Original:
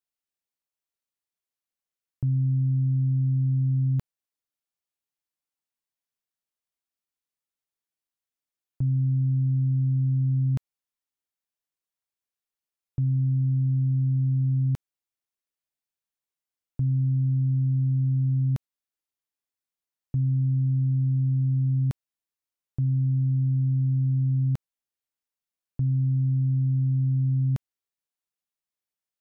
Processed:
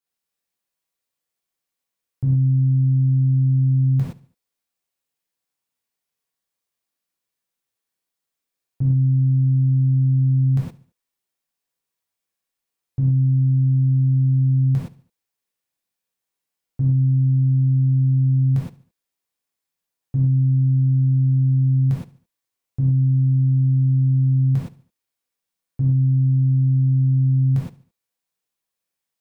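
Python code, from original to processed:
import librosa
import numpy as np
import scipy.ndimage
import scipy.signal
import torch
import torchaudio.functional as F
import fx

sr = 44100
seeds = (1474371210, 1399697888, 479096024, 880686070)

p1 = x + fx.echo_feedback(x, sr, ms=72, feedback_pct=43, wet_db=-19, dry=0)
y = fx.rev_gated(p1, sr, seeds[0], gate_ms=140, shape='flat', drr_db=-7.0)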